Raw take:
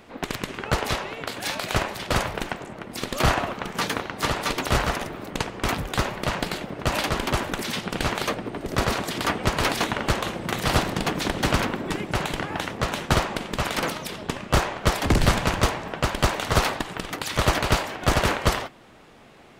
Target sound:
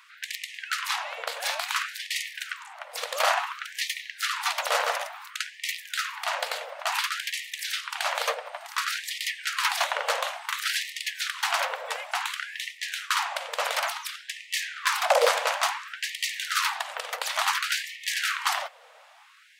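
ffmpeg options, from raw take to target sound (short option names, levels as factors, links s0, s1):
-filter_complex "[0:a]asettb=1/sr,asplit=3[s0][s1][s2];[s0]atrim=end=14.774[s3];[s1]atrim=start=14.77:end=15.28,asetpts=PTS-STARTPTS,afade=t=in:d=0.004:c=qsin,afade=t=out:st=0.506:d=0.004:c=qsin,afreqshift=450[s4];[s2]atrim=start=15.276[s5];[s3][s4]acrossfade=d=0.004:c1=hsin:c2=qsin[s6];[s6][s5]acrossfade=d=0.004:c1=qsin:c2=hsin,afftfilt=real='re*gte(b*sr/1024,440*pow(1800/440,0.5+0.5*sin(2*PI*0.57*pts/sr)))':imag='im*gte(b*sr/1024,440*pow(1800/440,0.5+0.5*sin(2*PI*0.57*pts/sr)))':win_size=1024:overlap=0.75"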